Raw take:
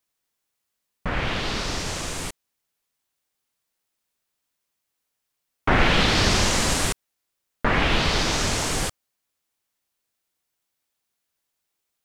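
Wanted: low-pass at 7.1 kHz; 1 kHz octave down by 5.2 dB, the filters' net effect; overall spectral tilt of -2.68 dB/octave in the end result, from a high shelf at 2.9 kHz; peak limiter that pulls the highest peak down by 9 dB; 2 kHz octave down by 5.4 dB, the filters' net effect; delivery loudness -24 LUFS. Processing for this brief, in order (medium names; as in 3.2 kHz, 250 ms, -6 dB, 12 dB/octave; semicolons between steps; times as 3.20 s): low-pass 7.1 kHz; peaking EQ 1 kHz -5.5 dB; peaking EQ 2 kHz -8.5 dB; treble shelf 2.9 kHz +7.5 dB; trim +2 dB; peak limiter -13.5 dBFS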